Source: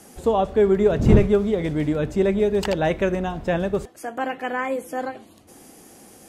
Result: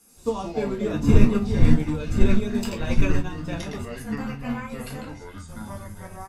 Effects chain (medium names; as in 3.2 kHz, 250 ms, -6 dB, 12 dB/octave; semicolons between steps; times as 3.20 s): treble shelf 4.4 kHz +11 dB; comb 0.8 ms, depth 56%; de-hum 52.96 Hz, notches 7; ever faster or slower copies 90 ms, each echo -5 st, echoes 3; reverberation, pre-delay 4 ms, DRR -1 dB; upward expansion 1.5:1, over -28 dBFS; trim -6 dB